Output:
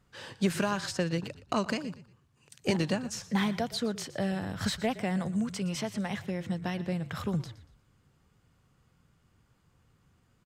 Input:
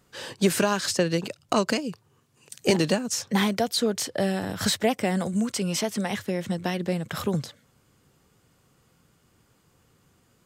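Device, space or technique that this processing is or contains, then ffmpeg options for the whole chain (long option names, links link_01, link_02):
smiley-face EQ: -filter_complex "[0:a]aemphasis=mode=reproduction:type=75kf,asplit=4[link_01][link_02][link_03][link_04];[link_02]adelay=118,afreqshift=-35,volume=-16.5dB[link_05];[link_03]adelay=236,afreqshift=-70,volume=-26.7dB[link_06];[link_04]adelay=354,afreqshift=-105,volume=-36.8dB[link_07];[link_01][link_05][link_06][link_07]amix=inputs=4:normalize=0,lowshelf=frequency=89:gain=6.5,equalizer=frequency=420:width_type=o:width=1.8:gain=-6,highshelf=frequency=7300:gain=6,volume=-3dB"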